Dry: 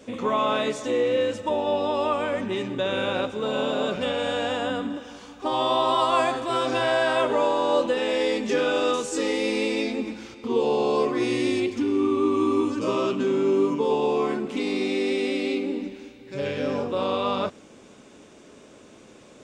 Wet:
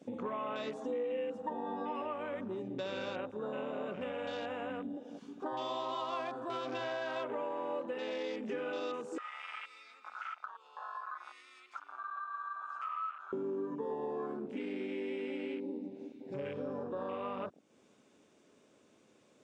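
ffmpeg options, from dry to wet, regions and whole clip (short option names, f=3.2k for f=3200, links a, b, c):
-filter_complex "[0:a]asettb=1/sr,asplit=3[a][b][c];[a]atrim=end=0.724[d];[b]atrim=start=0.72:end=2.02,asetpts=PTS-STARTPTS,afade=t=in:d=0.004:c=qsin,afade=t=out:st=1.296:d=0.004:c=qsin,aecho=1:1:4.3:0.98,atrim=end_sample=57330,aeval=exprs='val(0)+0.00891*sin(2*PI*790*n/s)':c=same[e];[c]atrim=start=2.016[f];[d][e]acrossfade=d=0.004:c1=hsin:c2=qsin[g];[g][f]acrossfade=d=0.004:c1=qsin:c2=hsin,asettb=1/sr,asplit=3[h][i][j];[h]atrim=end=9.184[k];[i]atrim=start=9.18:end=13.33,asetpts=PTS-STARTPTS,afade=t=in:d=0.004:c=qsin,afade=t=out:st=4.146:d=0.004:c=qsin,acompressor=threshold=-31dB:ratio=10:attack=3.2:release=140:knee=1:detection=peak,highpass=f=1.3k:t=q:w=15[l];[j]atrim=start=13.326[m];[k][l]acrossfade=d=0.004:c1=hsin:c2=qsin[n];[n][m]acrossfade=d=0.004:c1=qsin:c2=hsin,afwtdn=0.02,highpass=100,acompressor=threshold=-41dB:ratio=3"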